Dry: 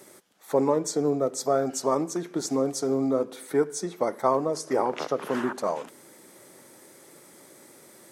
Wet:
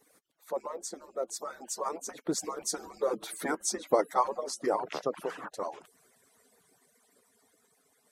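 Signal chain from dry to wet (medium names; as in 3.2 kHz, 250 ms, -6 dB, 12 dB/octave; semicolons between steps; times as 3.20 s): harmonic-percussive separation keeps percussive; Doppler pass-by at 3.37 s, 11 m/s, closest 7.7 m; trim +4 dB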